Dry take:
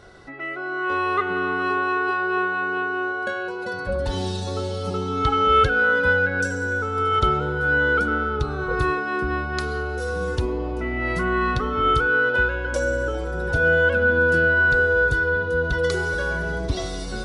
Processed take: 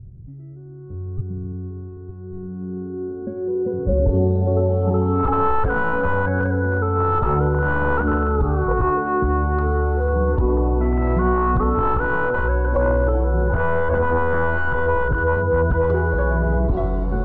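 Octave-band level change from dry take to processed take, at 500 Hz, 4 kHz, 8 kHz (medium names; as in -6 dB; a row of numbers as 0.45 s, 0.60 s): +2.5 dB, under -15 dB, under -35 dB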